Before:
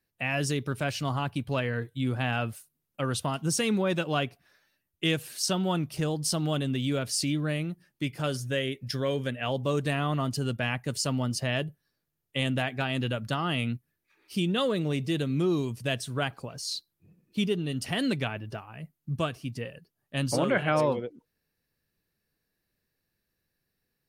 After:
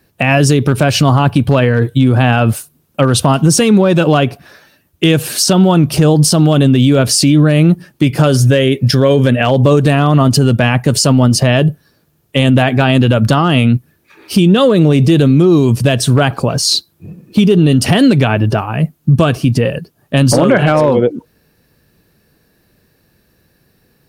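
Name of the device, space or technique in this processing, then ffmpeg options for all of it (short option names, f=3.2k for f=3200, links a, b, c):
mastering chain: -af "highpass=f=53:p=1,equalizer=f=2k:t=o:w=0.21:g=-4,acompressor=threshold=-29dB:ratio=3,tiltshelf=f=1.2k:g=3.5,asoftclip=type=hard:threshold=-21dB,alimiter=level_in=26dB:limit=-1dB:release=50:level=0:latency=1,volume=-1dB"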